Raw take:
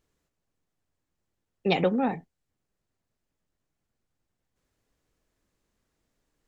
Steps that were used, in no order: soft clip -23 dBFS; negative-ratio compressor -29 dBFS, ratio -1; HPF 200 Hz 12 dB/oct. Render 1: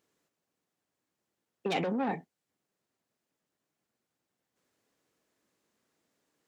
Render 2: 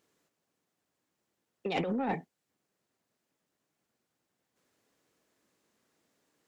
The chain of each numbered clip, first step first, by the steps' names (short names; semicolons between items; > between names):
soft clip > negative-ratio compressor > HPF; negative-ratio compressor > HPF > soft clip